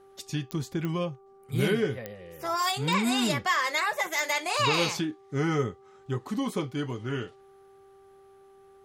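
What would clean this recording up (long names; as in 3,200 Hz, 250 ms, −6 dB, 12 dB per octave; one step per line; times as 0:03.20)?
click removal
hum removal 391.1 Hz, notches 3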